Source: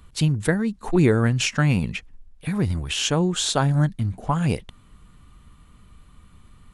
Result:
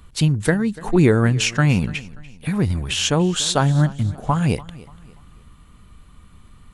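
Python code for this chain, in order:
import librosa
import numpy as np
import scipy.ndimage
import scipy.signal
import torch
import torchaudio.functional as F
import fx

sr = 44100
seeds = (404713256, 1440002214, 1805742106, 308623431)

y = fx.echo_feedback(x, sr, ms=291, feedback_pct=38, wet_db=-20.0)
y = y * librosa.db_to_amplitude(3.0)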